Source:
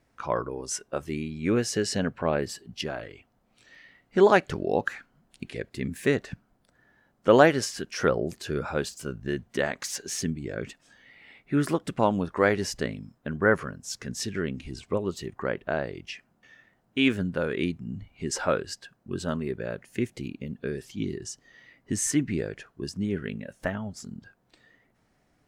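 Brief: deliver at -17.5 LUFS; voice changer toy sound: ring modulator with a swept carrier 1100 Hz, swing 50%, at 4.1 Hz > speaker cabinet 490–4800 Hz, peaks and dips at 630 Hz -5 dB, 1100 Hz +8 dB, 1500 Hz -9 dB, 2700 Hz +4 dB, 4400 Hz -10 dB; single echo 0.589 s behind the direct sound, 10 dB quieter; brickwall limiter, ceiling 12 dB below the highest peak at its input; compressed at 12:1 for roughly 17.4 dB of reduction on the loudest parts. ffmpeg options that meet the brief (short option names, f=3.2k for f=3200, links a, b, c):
-af "acompressor=threshold=-30dB:ratio=12,alimiter=level_in=5dB:limit=-24dB:level=0:latency=1,volume=-5dB,aecho=1:1:589:0.316,aeval=exprs='val(0)*sin(2*PI*1100*n/s+1100*0.5/4.1*sin(2*PI*4.1*n/s))':c=same,highpass=490,equalizer=f=630:t=q:w=4:g=-5,equalizer=f=1.1k:t=q:w=4:g=8,equalizer=f=1.5k:t=q:w=4:g=-9,equalizer=f=2.7k:t=q:w=4:g=4,equalizer=f=4.4k:t=q:w=4:g=-10,lowpass=f=4.8k:w=0.5412,lowpass=f=4.8k:w=1.3066,volume=25.5dB"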